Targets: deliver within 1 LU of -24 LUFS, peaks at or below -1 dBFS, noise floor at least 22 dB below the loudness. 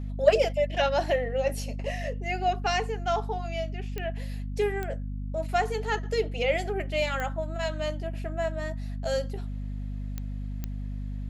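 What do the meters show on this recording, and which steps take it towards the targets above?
clicks found 5; hum 50 Hz; highest harmonic 250 Hz; hum level -31 dBFS; loudness -29.5 LUFS; peak level -7.5 dBFS; loudness target -24.0 LUFS
-> de-click; de-hum 50 Hz, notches 5; trim +5.5 dB

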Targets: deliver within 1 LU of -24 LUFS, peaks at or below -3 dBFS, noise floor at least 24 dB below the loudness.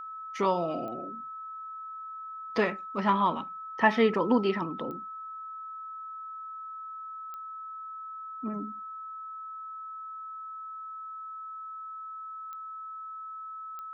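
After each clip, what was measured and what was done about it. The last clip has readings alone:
clicks found 5; steady tone 1.3 kHz; tone level -38 dBFS; loudness -33.0 LUFS; peak level -8.0 dBFS; loudness target -24.0 LUFS
-> de-click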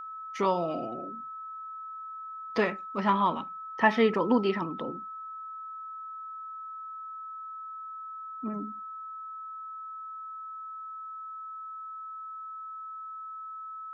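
clicks found 0; steady tone 1.3 kHz; tone level -38 dBFS
-> band-stop 1.3 kHz, Q 30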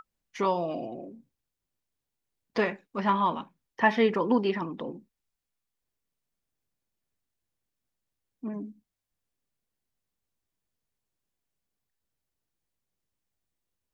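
steady tone not found; loudness -28.5 LUFS; peak level -9.0 dBFS; loudness target -24.0 LUFS
-> trim +4.5 dB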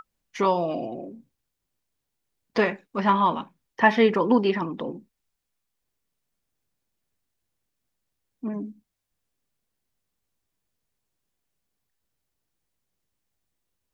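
loudness -24.0 LUFS; peak level -4.5 dBFS; noise floor -81 dBFS

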